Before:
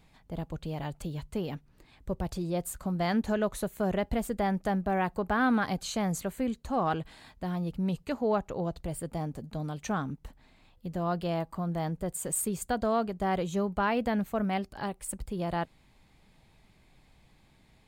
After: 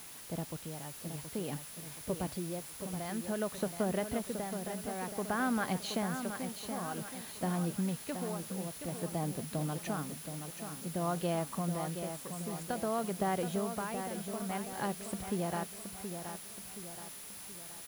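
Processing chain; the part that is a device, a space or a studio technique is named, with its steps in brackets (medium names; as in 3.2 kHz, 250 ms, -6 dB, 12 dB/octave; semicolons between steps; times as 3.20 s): medium wave at night (band-pass 120–4400 Hz; compression, threshold -30 dBFS, peak gain reduction 8 dB; tremolo 0.53 Hz, depth 72%; whistle 10 kHz -55 dBFS; white noise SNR 12 dB); feedback delay 724 ms, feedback 47%, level -8 dB; trim +1.5 dB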